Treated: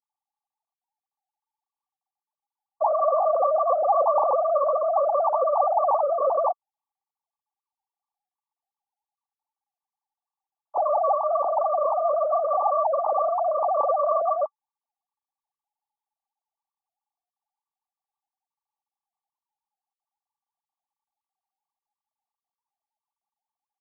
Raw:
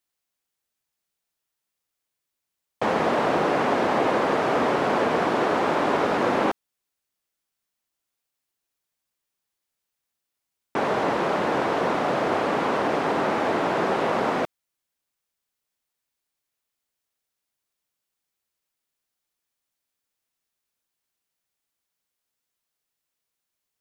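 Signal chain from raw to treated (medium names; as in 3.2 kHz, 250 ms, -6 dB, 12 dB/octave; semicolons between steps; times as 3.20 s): formants replaced by sine waves; rippled Chebyshev low-pass 1.2 kHz, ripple 9 dB; trim +8.5 dB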